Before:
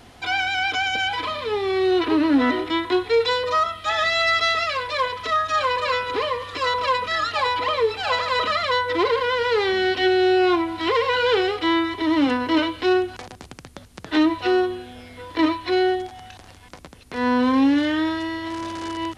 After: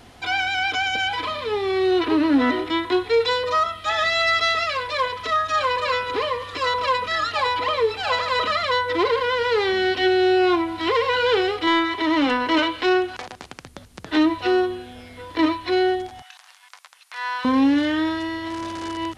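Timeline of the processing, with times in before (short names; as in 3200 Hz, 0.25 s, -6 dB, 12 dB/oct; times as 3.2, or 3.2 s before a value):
11.67–13.65 overdrive pedal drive 10 dB, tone 4300 Hz, clips at -9.5 dBFS
16.22–17.45 HPF 960 Hz 24 dB/oct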